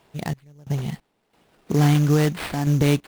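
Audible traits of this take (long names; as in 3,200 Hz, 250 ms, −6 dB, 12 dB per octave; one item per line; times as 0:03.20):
a quantiser's noise floor 10 bits, dither none
sample-and-hold tremolo 3 Hz, depth 95%
aliases and images of a low sample rate 6,400 Hz, jitter 20%
Nellymoser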